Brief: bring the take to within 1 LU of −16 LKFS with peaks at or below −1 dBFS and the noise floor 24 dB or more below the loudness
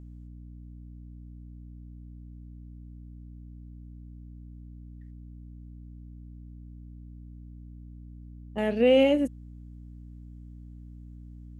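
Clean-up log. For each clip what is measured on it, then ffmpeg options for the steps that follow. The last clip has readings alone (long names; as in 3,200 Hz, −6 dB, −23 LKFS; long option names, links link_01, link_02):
mains hum 60 Hz; hum harmonics up to 300 Hz; level of the hum −42 dBFS; integrated loudness −24.0 LKFS; sample peak −11.0 dBFS; target loudness −16.0 LKFS
→ -af "bandreject=frequency=60:width_type=h:width=4,bandreject=frequency=120:width_type=h:width=4,bandreject=frequency=180:width_type=h:width=4,bandreject=frequency=240:width_type=h:width=4,bandreject=frequency=300:width_type=h:width=4"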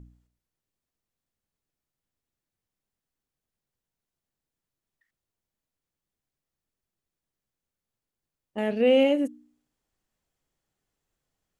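mains hum none found; integrated loudness −23.5 LKFS; sample peak −11.0 dBFS; target loudness −16.0 LKFS
→ -af "volume=7.5dB"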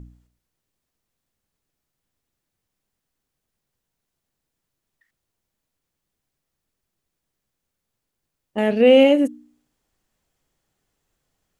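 integrated loudness −16.0 LKFS; sample peak −3.5 dBFS; background noise floor −81 dBFS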